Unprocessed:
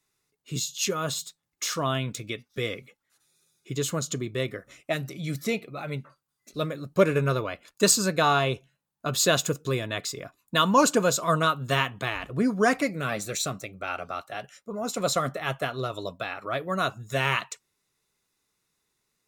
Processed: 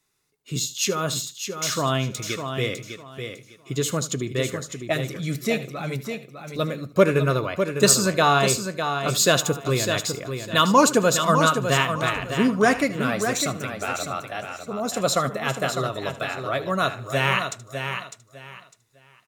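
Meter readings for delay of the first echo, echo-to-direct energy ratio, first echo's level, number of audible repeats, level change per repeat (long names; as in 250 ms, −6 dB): 76 ms, −6.5 dB, −16.0 dB, 6, repeats not evenly spaced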